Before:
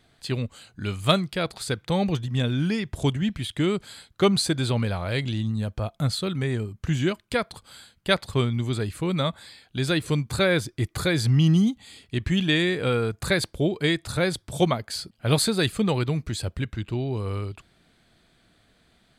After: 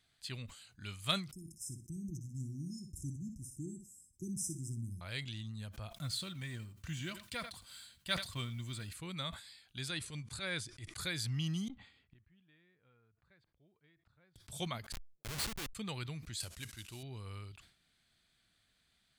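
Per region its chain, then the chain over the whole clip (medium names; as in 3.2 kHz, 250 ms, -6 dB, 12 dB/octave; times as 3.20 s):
1.32–5.01 s: brick-wall FIR band-stop 380–5100 Hz + feedback delay 60 ms, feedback 20%, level -9 dB
5.94–8.93 s: companding laws mixed up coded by mu + comb of notches 420 Hz + delay 85 ms -20.5 dB
9.88–11.00 s: transient shaper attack -11 dB, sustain -6 dB + careless resampling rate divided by 2×, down none, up filtered
11.68–14.36 s: low-pass 1.6 kHz + inverted gate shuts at -30 dBFS, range -27 dB
14.92–15.75 s: high-pass 130 Hz + peaking EQ 730 Hz +7 dB 0.49 oct + Schmitt trigger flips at -22 dBFS
16.40–17.03 s: CVSD coder 64 kbps + tone controls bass -5 dB, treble +9 dB
whole clip: amplifier tone stack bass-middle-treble 5-5-5; decay stretcher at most 110 dB/s; trim -2 dB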